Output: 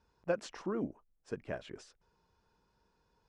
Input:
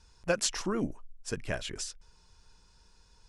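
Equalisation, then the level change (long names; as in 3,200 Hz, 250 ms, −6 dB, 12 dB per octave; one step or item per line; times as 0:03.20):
resonant band-pass 440 Hz, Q 0.51
−3.0 dB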